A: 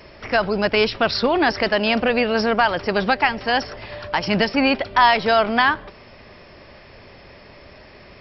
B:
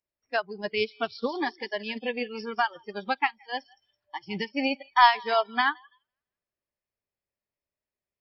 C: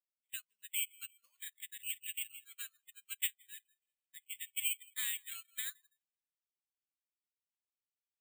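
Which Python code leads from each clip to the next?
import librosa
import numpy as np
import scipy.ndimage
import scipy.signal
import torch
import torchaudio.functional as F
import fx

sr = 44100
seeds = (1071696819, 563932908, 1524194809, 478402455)

y1 = fx.echo_thinned(x, sr, ms=167, feedback_pct=52, hz=740.0, wet_db=-9)
y1 = fx.noise_reduce_blind(y1, sr, reduce_db=27)
y1 = fx.upward_expand(y1, sr, threshold_db=-27.0, expansion=2.5)
y1 = y1 * 10.0 ** (-1.5 / 20.0)
y2 = scipy.signal.sosfilt(scipy.signal.cheby2(4, 60, 890.0, 'highpass', fs=sr, output='sos'), y1)
y2 = (np.kron(scipy.signal.resample_poly(y2, 1, 8), np.eye(8)[0]) * 8)[:len(y2)]
y2 = y2 * 10.0 ** (-1.5 / 20.0)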